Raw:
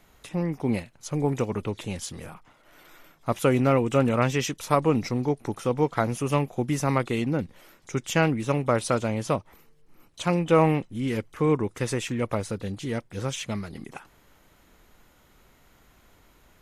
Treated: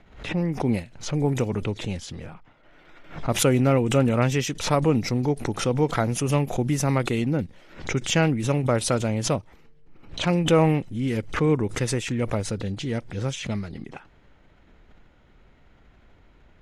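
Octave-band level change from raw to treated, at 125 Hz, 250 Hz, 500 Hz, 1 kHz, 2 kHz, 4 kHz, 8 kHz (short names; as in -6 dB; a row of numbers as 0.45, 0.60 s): +3.5, +2.0, +0.5, -1.0, +1.5, +5.5, +5.5 dB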